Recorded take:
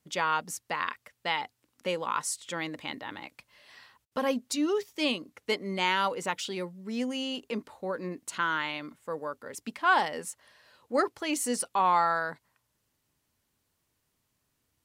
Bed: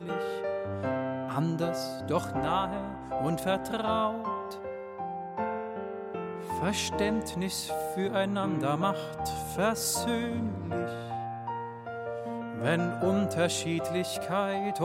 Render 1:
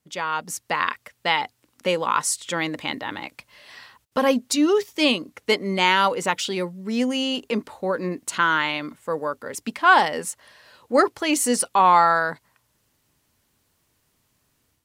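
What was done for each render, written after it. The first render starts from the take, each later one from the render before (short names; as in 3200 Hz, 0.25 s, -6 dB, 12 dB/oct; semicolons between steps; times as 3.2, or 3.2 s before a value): AGC gain up to 9 dB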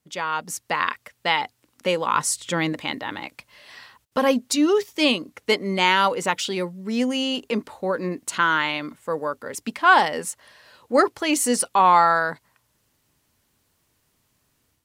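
2.12–2.73 low shelf 250 Hz +9.5 dB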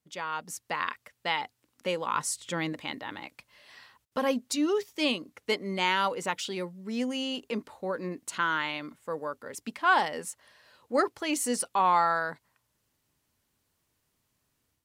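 gain -8 dB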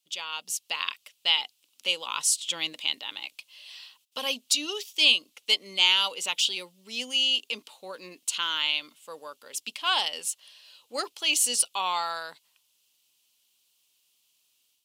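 HPF 1200 Hz 6 dB/oct; resonant high shelf 2300 Hz +8 dB, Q 3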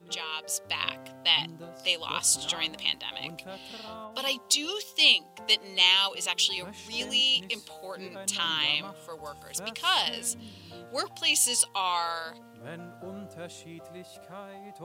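add bed -14.5 dB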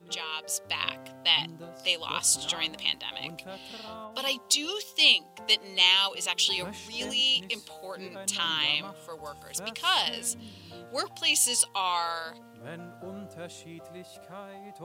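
6.43–7.36 transient shaper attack -5 dB, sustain +5 dB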